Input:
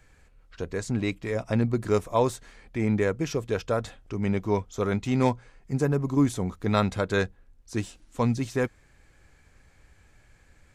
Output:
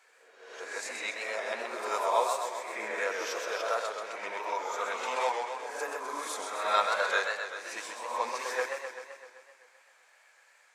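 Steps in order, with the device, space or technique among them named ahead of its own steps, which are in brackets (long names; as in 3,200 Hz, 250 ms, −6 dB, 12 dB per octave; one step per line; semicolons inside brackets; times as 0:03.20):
ghost voice (reversed playback; convolution reverb RT60 1.1 s, pre-delay 3 ms, DRR −0.5 dB; reversed playback; high-pass filter 630 Hz 24 dB per octave)
feedback echo with a swinging delay time 129 ms, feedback 65%, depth 138 cents, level −5.5 dB
level −2 dB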